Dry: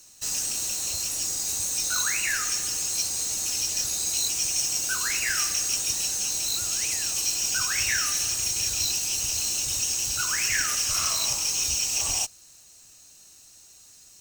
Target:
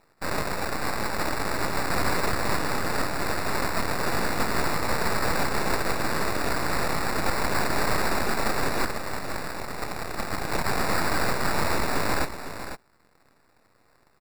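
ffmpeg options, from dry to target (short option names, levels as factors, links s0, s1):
-filter_complex "[0:a]asettb=1/sr,asplit=3[s0][s1][s2];[s0]atrim=end=8.854[s3];[s1]atrim=start=8.85:end=10.66,asetpts=PTS-STARTPTS,afade=t=in:d=0.004:c=qsin,afade=t=out:st=1.806:d=0.004:c=qsin,equalizer=f=13000:w=0.36:g=-11.5[s4];[s2]atrim=start=10.656[s5];[s3][s4]acrossfade=d=0.004:c1=hsin:c2=qsin[s6];[s6][s5]acrossfade=d=0.004:c1=qsin:c2=hsin,asplit=2[s7][s8];[s8]acompressor=threshold=0.0158:ratio=6,volume=1.06[s9];[s7][s9]amix=inputs=2:normalize=0,acrusher=samples=14:mix=1:aa=0.000001,aeval=exprs='0.335*(cos(1*acos(clip(val(0)/0.335,-1,1)))-cos(1*PI/2))+0.15*(cos(3*acos(clip(val(0)/0.335,-1,1)))-cos(3*PI/2))+0.0299*(cos(5*acos(clip(val(0)/0.335,-1,1)))-cos(5*PI/2))+0.168*(cos(6*acos(clip(val(0)/0.335,-1,1)))-cos(6*PI/2))':c=same,aecho=1:1:503:0.316,volume=0.531"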